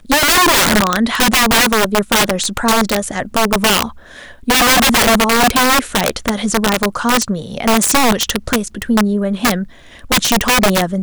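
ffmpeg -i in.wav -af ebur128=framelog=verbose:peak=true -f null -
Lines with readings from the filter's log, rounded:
Integrated loudness:
  I:         -13.2 LUFS
  Threshold: -23.4 LUFS
Loudness range:
  LRA:         2.7 LU
  Threshold: -33.7 LUFS
  LRA low:   -15.4 LUFS
  LRA high:  -12.6 LUFS
True peak:
  Peak:       -2.0 dBFS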